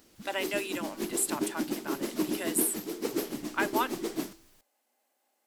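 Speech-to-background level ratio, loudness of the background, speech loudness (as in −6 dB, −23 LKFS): 1.5 dB, −34.5 LKFS, −33.0 LKFS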